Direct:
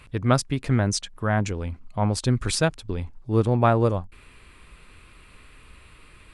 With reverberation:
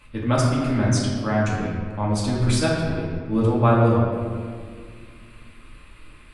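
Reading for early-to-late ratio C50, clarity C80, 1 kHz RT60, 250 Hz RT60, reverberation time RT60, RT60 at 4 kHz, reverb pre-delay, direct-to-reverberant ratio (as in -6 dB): 0.0 dB, 1.5 dB, 1.9 s, 2.8 s, 2.0 s, 1.2 s, 3 ms, -6.5 dB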